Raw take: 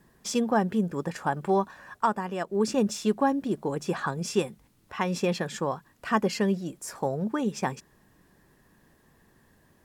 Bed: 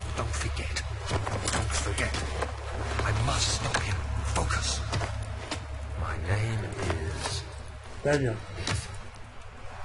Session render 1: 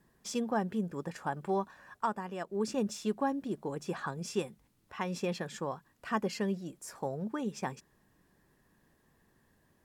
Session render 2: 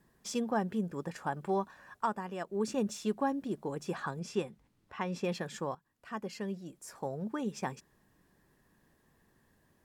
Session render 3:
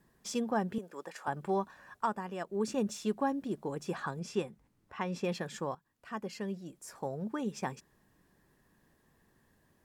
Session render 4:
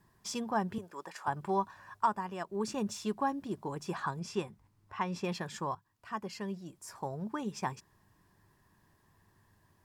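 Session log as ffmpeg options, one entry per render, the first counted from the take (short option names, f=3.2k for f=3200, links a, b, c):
-af "volume=-7.5dB"
-filter_complex "[0:a]asettb=1/sr,asplit=3[a][b][c];[a]atrim=end=2.494[d];[b]atrim=start=2.49:end=3,asetpts=PTS-STARTPTS,afade=t=in:d=0.004:c=qsin,afade=t=out:st=0.506:d=0.004:c=qsin,bandreject=f=5.1k:w=12[e];[c]atrim=start=2.996[f];[d][e]acrossfade=d=0.004:c1=hsin:c2=qsin[g];[g][f]acrossfade=d=0.004:c1=qsin:c2=hsin,asettb=1/sr,asplit=3[h][i][j];[h]atrim=end=4.194[k];[i]atrim=start=4.19:end=5.25,asetpts=PTS-STARTPTS,afade=t=in:d=0.004:c=qsin,afade=t=out:st=1.056:d=0.004:c=qsin,lowpass=f=3.9k:p=1[l];[j]atrim=start=5.246[m];[k][l]acrossfade=d=0.004:c1=hsin:c2=qsin[n];[n][m]acrossfade=d=0.004:c1=qsin:c2=hsin,asplit=2[o][p];[o]atrim=end=5.75,asetpts=PTS-STARTPTS,afade=t=out:st=5.746:d=0.004:c=hsin:silence=0.223872[q];[p]atrim=start=5.75,asetpts=PTS-STARTPTS,afade=t=in:d=1.66:silence=0.223872[r];[q][r]concat=n=2:v=0:a=1"
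-filter_complex "[0:a]asettb=1/sr,asplit=3[a][b][c];[a]atrim=end=0.784[d];[b]atrim=start=0.78:end=1.28,asetpts=PTS-STARTPTS,afade=t=in:d=0.004:c=qsin,afade=t=out:st=0.496:d=0.004:c=qsin,highpass=490[e];[c]atrim=start=1.276[f];[d][e]acrossfade=d=0.004:c1=hsin:c2=qsin[g];[g][f]acrossfade=d=0.004:c1=qsin:c2=hsin,asettb=1/sr,asplit=3[h][i][j];[h]atrim=end=4.464[k];[i]atrim=start=4.46:end=4.96,asetpts=PTS-STARTPTS,afade=t=in:d=0.004:c=qsin,afade=t=out:st=0.496:d=0.004:c=qsin,equalizer=f=3.5k:t=o:w=1.2:g=-4.5[l];[j]atrim=start=4.956[m];[k][l]acrossfade=d=0.004:c1=hsin:c2=qsin[n];[n][m]acrossfade=d=0.004:c1=qsin:c2=hsin"
-af "equalizer=f=100:t=o:w=0.33:g=12,equalizer=f=250:t=o:w=0.33:g=-5,equalizer=f=500:t=o:w=0.33:g=-7,equalizer=f=1k:t=o:w=0.33:g=7,equalizer=f=5k:t=o:w=0.33:g=3"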